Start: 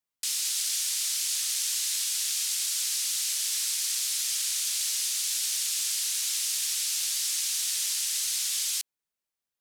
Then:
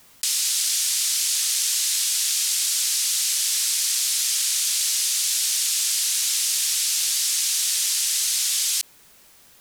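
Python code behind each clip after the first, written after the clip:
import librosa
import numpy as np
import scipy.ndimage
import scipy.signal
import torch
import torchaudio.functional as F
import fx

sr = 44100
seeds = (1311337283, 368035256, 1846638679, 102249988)

y = fx.low_shelf(x, sr, hz=360.0, db=3.5)
y = fx.env_flatten(y, sr, amount_pct=50)
y = y * 10.0 ** (6.0 / 20.0)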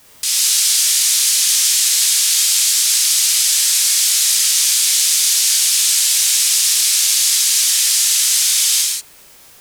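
y = fx.rev_gated(x, sr, seeds[0], gate_ms=210, shape='flat', drr_db=-4.0)
y = y * 10.0 ** (3.0 / 20.0)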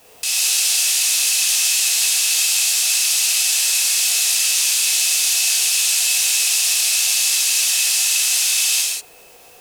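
y = fx.small_body(x, sr, hz=(480.0, 700.0, 2600.0), ring_ms=30, db=15)
y = y * 10.0 ** (-3.5 / 20.0)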